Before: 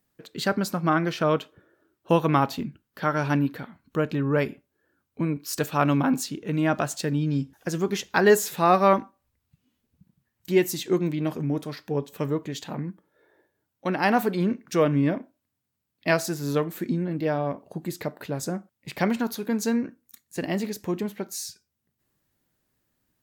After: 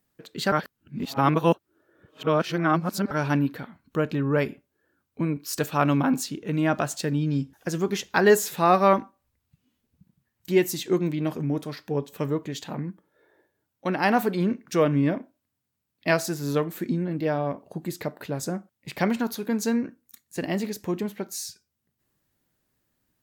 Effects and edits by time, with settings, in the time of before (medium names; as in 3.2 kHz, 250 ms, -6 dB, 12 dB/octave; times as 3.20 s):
0.52–3.11 s: reverse